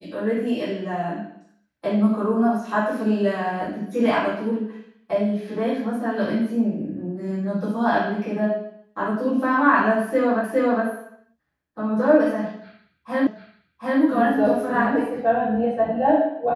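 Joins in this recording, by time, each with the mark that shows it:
10.44 repeat of the last 0.41 s
13.27 repeat of the last 0.74 s

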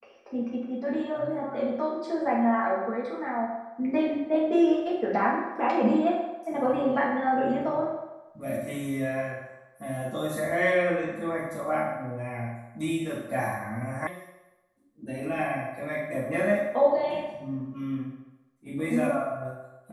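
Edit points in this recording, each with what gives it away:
14.07 sound cut off

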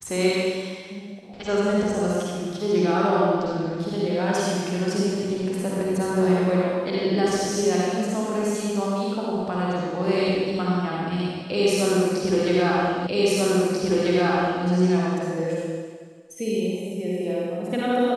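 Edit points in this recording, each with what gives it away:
13.07 repeat of the last 1.59 s

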